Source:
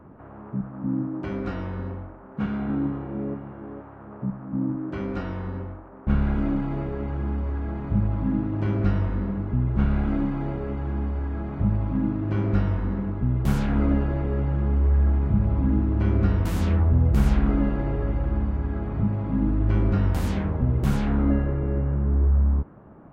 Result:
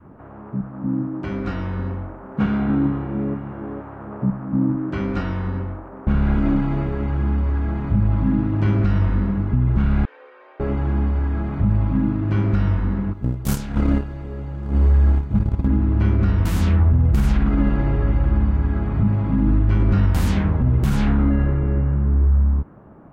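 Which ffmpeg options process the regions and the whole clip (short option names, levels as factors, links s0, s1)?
-filter_complex "[0:a]asettb=1/sr,asplit=3[s0][s1][s2];[s0]atrim=end=10.054[s3];[s1]atrim=start=10.05:end=10.6,asetpts=PTS-STARTPTS,afade=t=in:d=0.004:c=qsin,afade=t=out:st=0.546:d=0.004:c=qsin,lowpass=2000,aderivative,afreqshift=230[s4];[s2]atrim=start=10.596[s5];[s3][s4]acrossfade=d=0.004:c1=hsin:c2=qsin[s6];[s6][s5]acrossfade=d=0.004:c1=qsin:c2=hsin,asettb=1/sr,asplit=3[s7][s8][s9];[s7]atrim=end=13.134[s10];[s8]atrim=start=13.13:end=15.68,asetpts=PTS-STARTPTS,afade=t=in:d=0.004:c=qsin,afade=t=out:st=2.546:d=0.004:c=qsin,agate=range=0.126:threshold=0.1:ratio=16:release=100:detection=peak,bass=f=250:g=0,treble=f=4000:g=14,acontrast=87[s11];[s9]atrim=start=15.676[s12];[s10][s11]acrossfade=d=0.004:c1=hsin:c2=qsin[s13];[s13][s12]acrossfade=d=0.004:c1=qsin:c2=hsin,dynaudnorm=f=290:g=11:m=1.78,adynamicequalizer=threshold=0.0158:dfrequency=510:dqfactor=0.86:tfrequency=510:tqfactor=0.86:attack=5:release=100:ratio=0.375:range=3:mode=cutabove:tftype=bell,alimiter=level_in=3.55:limit=0.891:release=50:level=0:latency=1,volume=0.398"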